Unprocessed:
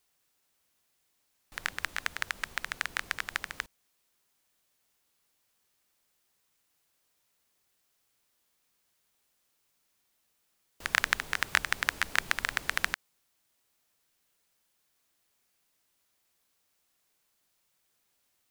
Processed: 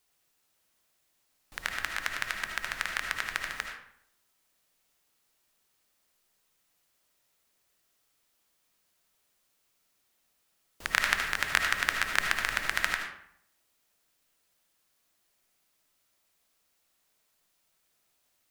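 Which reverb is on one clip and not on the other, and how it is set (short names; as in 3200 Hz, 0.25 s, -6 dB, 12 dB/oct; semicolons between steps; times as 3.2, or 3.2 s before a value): digital reverb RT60 0.69 s, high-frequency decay 0.65×, pre-delay 35 ms, DRR 2.5 dB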